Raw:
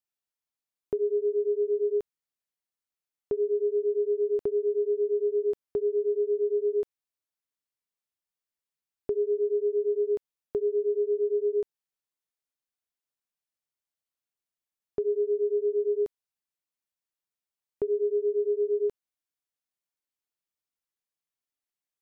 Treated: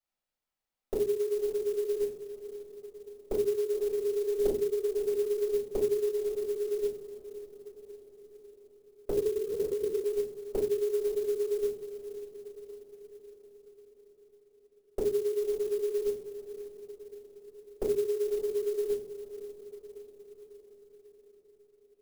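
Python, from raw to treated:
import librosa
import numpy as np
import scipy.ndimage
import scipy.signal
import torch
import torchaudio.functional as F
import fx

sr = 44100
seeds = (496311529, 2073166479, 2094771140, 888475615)

y = fx.env_lowpass_down(x, sr, base_hz=390.0, full_db=-23.0)
y = fx.doubler(y, sr, ms=44.0, db=-6, at=(3.69, 5.11))
y = fx.echo_diffused(y, sr, ms=569, feedback_pct=59, wet_db=-12)
y = fx.room_shoebox(y, sr, seeds[0], volume_m3=140.0, walls='furnished', distance_m=5.5)
y = fx.lpc_vocoder(y, sr, seeds[1], excitation='whisper', order=16, at=(9.11, 10.04))
y = fx.clock_jitter(y, sr, seeds[2], jitter_ms=0.032)
y = y * librosa.db_to_amplitude(-7.5)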